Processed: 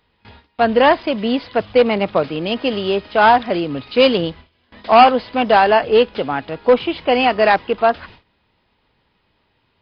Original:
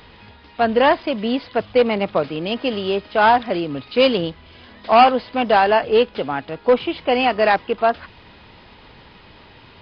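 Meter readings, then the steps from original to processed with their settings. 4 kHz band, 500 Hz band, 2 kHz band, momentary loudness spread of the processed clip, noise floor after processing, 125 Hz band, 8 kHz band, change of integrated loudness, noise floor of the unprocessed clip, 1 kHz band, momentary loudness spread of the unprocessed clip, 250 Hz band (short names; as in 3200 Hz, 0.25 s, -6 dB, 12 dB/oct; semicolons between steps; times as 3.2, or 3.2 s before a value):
+2.5 dB, +2.5 dB, +2.5 dB, 9 LU, -65 dBFS, +2.5 dB, n/a, +2.5 dB, -47 dBFS, +2.5 dB, 9 LU, +2.5 dB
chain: gate with hold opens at -32 dBFS; gain +2.5 dB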